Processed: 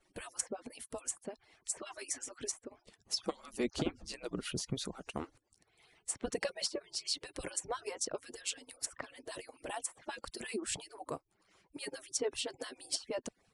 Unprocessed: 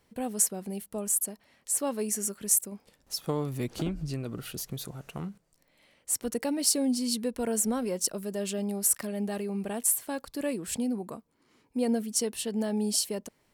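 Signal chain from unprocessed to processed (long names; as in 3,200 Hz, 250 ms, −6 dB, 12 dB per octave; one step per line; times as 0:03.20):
harmonic-percussive split with one part muted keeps percussive
treble cut that deepens with the level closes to 1,500 Hz, closed at −24 dBFS
level +2 dB
MP3 160 kbit/s 24,000 Hz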